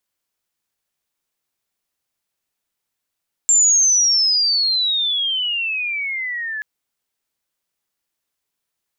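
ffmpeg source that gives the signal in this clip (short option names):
-f lavfi -i "aevalsrc='pow(10,(-10-13.5*t/3.13)/20)*sin(2*PI*7400*3.13/log(1700/7400)*(exp(log(1700/7400)*t/3.13)-1))':d=3.13:s=44100"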